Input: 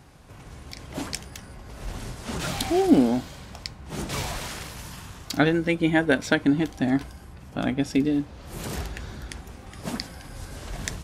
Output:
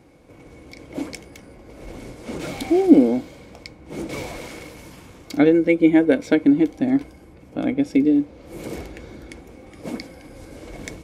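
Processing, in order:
hollow resonant body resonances 320/480/2,200 Hz, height 15 dB, ringing for 30 ms
level −6.5 dB

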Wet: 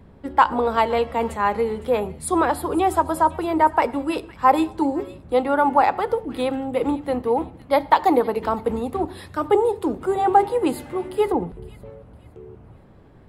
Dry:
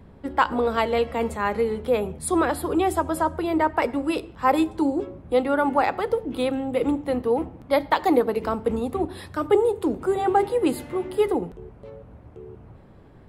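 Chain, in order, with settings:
0:11.32–0:11.90: bass and treble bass +5 dB, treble −15 dB
delay with a high-pass on its return 510 ms, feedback 33%, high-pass 1,800 Hz, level −17 dB
dynamic equaliser 900 Hz, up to +7 dB, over −37 dBFS, Q 2

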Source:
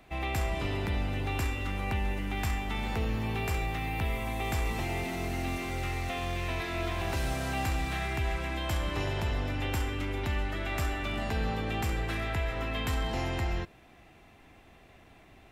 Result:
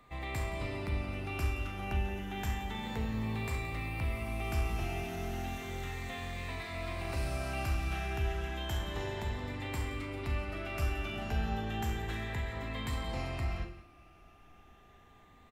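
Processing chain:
rippled gain that drifts along the octave scale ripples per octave 1, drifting +0.32 Hz, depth 6 dB
low-shelf EQ 150 Hz +6 dB
mains-hum notches 50/100/150/200/250/300/350 Hz
four-comb reverb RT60 0.35 s, combs from 29 ms, DRR 7.5 dB
steady tone 1,200 Hz −55 dBFS
on a send: single-tap delay 173 ms −15 dB
on the sum: level −7 dB

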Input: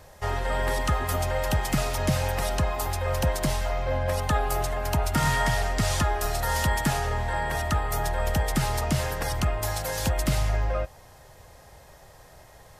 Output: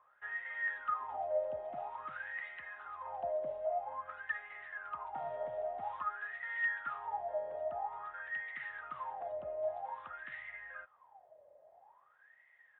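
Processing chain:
downsampling to 8,000 Hz
LFO wah 0.5 Hz 580–2,000 Hz, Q 21
level +4 dB

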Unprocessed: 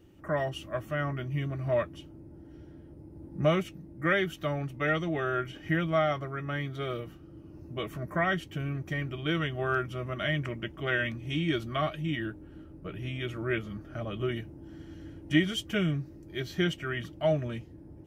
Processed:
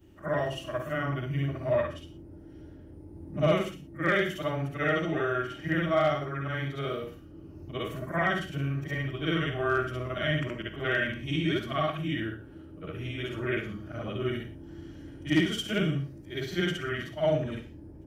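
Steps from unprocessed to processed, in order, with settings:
every overlapping window played backwards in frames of 144 ms
hard clipping −20.5 dBFS, distortion −29 dB
reverb whose tail is shaped and stops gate 140 ms flat, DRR 9 dB
level +4 dB

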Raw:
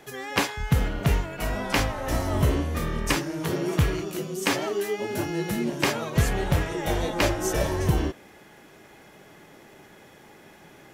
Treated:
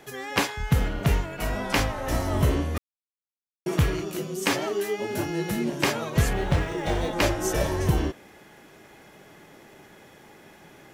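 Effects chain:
0:02.78–0:03.66: silence
0:06.33–0:07.13: linearly interpolated sample-rate reduction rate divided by 3×

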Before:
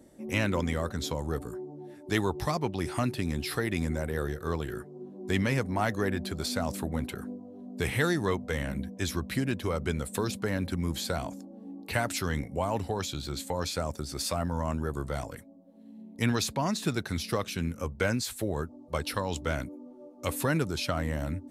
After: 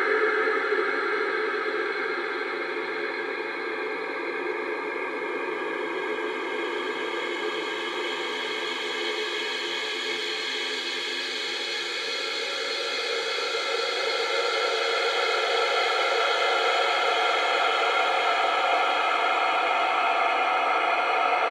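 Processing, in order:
delay that plays each chunk backwards 158 ms, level 0 dB
high-pass filter 440 Hz 24 dB per octave
high-shelf EQ 3,400 Hz +9 dB
notch filter 5,100 Hz, Q 24
comb filter 2.4 ms, depth 86%
in parallel at 0 dB: compressor whose output falls as the input rises −28 dBFS
on the sum: auto-filter low-pass saw up 0.53 Hz 870–2,400 Hz
extreme stretch with random phases 44×, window 0.25 s, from 0:10.76
on a send at −19.5 dB: convolution reverb RT60 1.2 s, pre-delay 4 ms

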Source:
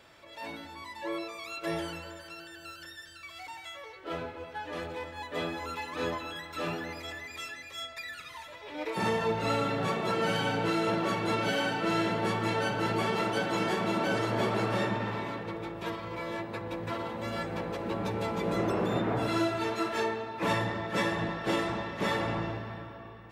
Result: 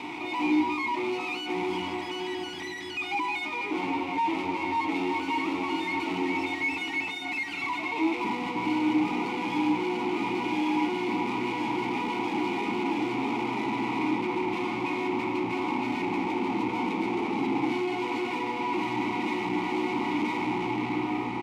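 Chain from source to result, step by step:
in parallel at +1.5 dB: compressor whose output falls as the input rises −34 dBFS
on the sum: dead-zone distortion −58.5 dBFS
wrong playback speed 44.1 kHz file played as 48 kHz
fuzz pedal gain 49 dB, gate −56 dBFS
formant filter u
on a send: single-tap delay 918 ms −16.5 dB
on the sum: level −1.5 dB

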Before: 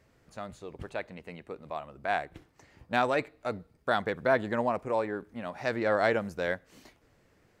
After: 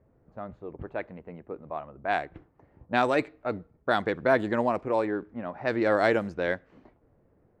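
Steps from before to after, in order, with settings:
dynamic equaliser 320 Hz, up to +6 dB, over −48 dBFS, Q 2.7
low-pass that shuts in the quiet parts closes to 760 Hz, open at −21.5 dBFS
level +2 dB

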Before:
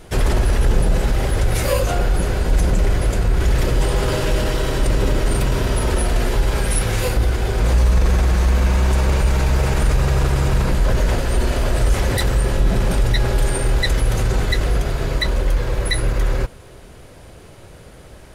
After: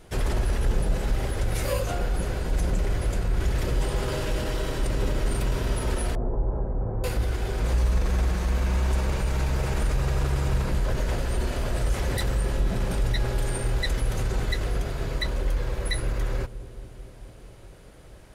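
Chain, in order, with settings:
0:06.15–0:07.04: inverse Chebyshev low-pass filter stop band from 4,100 Hz, stop band 70 dB
delay with a low-pass on its return 219 ms, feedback 76%, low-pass 470 Hz, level −14 dB
level −8.5 dB

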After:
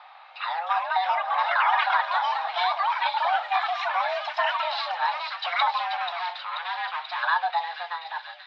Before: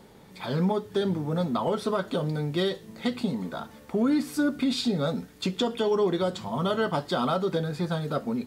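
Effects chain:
fade-out on the ending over 0.89 s
in parallel at −2 dB: downward compressor, threshold −39 dBFS, peak gain reduction 17.5 dB
0:05.78–0:07.23: on the sum: gain into a clipping stage and back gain 29.5 dB
delay with a high-pass on its return 484 ms, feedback 70%, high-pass 2,200 Hz, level −5.5 dB
delay with pitch and tempo change per echo 413 ms, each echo +6 semitones, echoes 3
single-sideband voice off tune +350 Hz 410–3,500 Hz
level +3 dB

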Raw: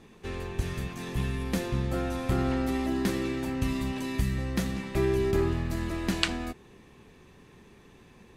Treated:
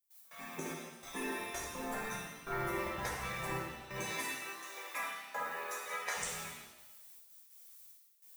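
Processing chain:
spectral dynamics exaggerated over time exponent 2
low-pass filter 9,600 Hz 12 dB per octave
gate on every frequency bin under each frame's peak −20 dB weak
0:04.03–0:06.17: high-pass filter 550 Hz 12 dB per octave
downward compressor 5 to 1, threshold −53 dBFS, peak gain reduction 12 dB
background noise violet −74 dBFS
gate pattern ".x.xxxx...xxxx" 146 BPM −24 dB
reverb with rising layers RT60 1.1 s, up +7 semitones, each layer −8 dB, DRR −3.5 dB
level +13 dB

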